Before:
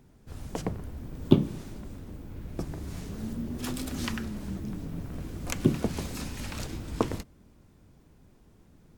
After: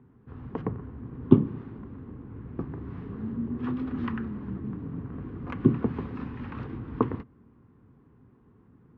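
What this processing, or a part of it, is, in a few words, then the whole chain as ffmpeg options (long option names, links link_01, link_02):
bass cabinet: -af "highpass=66,equalizer=frequency=120:width_type=q:width=4:gain=7,equalizer=frequency=250:width_type=q:width=4:gain=7,equalizer=frequency=420:width_type=q:width=4:gain=5,equalizer=frequency=620:width_type=q:width=4:gain=-9,equalizer=frequency=1100:width_type=q:width=4:gain=7,equalizer=frequency=2300:width_type=q:width=4:gain=-5,lowpass=frequency=2300:width=0.5412,lowpass=frequency=2300:width=1.3066,volume=-1.5dB"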